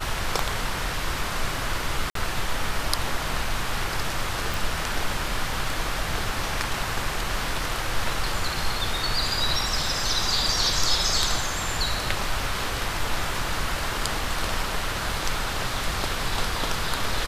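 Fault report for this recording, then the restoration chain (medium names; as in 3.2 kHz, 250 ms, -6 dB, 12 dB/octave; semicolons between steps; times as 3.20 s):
2.10–2.15 s: dropout 53 ms
4.54 s: pop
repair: de-click; interpolate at 2.10 s, 53 ms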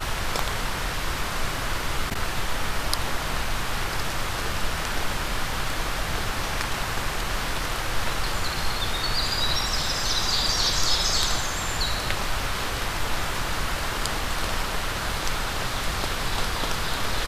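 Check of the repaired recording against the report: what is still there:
nothing left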